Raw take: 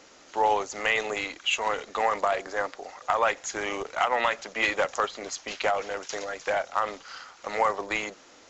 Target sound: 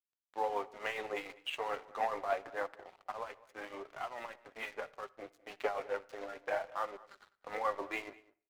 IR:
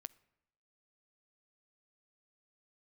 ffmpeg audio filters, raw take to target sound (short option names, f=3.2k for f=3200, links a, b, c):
-filter_complex "[0:a]highpass=250,highshelf=f=2.3k:g=-5.5,asettb=1/sr,asplit=3[a][b][c];[a]atrim=end=3.114[d];[b]atrim=start=3.11:end=5.63,asetpts=PTS-STARTPTS,afade=t=in:d=0.004:c=qsin,afade=t=out:st=2.516:d=0.004:c=qsin,acompressor=threshold=-33dB:ratio=3[e];[c]atrim=start=5.626[f];[d][e]acrossfade=d=0.004:c1=hsin:c2=qsin[g];[g][f]acrossfade=d=0.004:c1=qsin:c2=hsin,alimiter=limit=-18dB:level=0:latency=1:release=115,flanger=delay=2.8:depth=5.1:regen=-21:speed=0.25:shape=triangular,adynamicsmooth=sensitivity=3:basefreq=2.2k,tremolo=f=6.9:d=0.55,flanger=delay=4.7:depth=8.9:regen=63:speed=0.71:shape=sinusoidal,aeval=exprs='sgn(val(0))*max(abs(val(0))-0.00158,0)':c=same,asplit=2[h][i];[i]adelay=204.1,volume=-21dB,highshelf=f=4k:g=-4.59[j];[h][j]amix=inputs=2:normalize=0[k];[1:a]atrim=start_sample=2205,afade=t=out:st=0.34:d=0.01,atrim=end_sample=15435[l];[k][l]afir=irnorm=-1:irlink=0,volume=10.5dB"